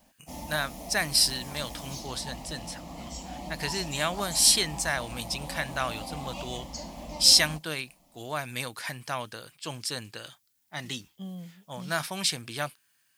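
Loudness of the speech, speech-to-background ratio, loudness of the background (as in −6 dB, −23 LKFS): −27.0 LKFS, 13.0 dB, −40.0 LKFS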